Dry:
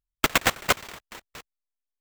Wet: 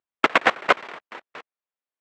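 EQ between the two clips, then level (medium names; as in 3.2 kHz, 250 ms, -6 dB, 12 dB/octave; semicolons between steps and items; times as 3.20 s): band-pass 330–2200 Hz; +6.5 dB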